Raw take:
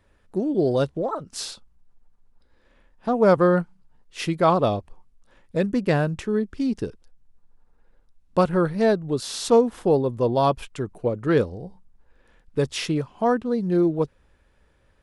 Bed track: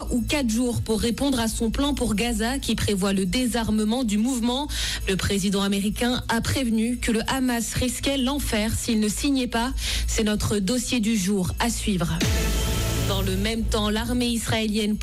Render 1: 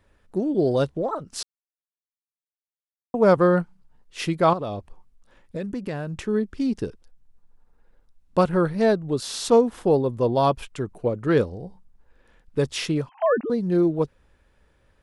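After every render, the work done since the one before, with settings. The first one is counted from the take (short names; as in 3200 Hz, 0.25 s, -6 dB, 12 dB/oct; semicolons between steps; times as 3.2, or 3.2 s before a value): 1.43–3.14 mute; 4.53–6.18 compressor 4:1, threshold -27 dBFS; 13.09–13.5 sine-wave speech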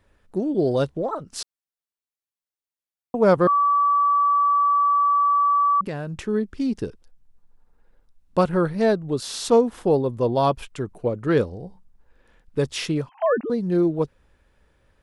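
3.47–5.81 bleep 1150 Hz -15.5 dBFS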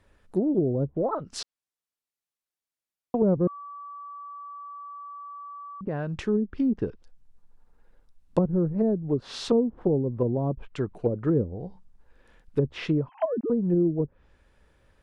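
treble ducked by the level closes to 320 Hz, closed at -18 dBFS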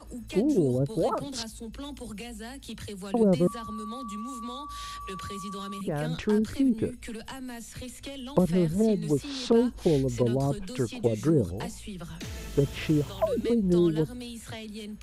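add bed track -16 dB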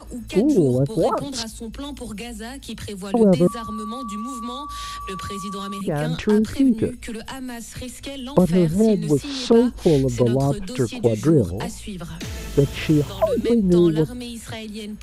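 gain +7 dB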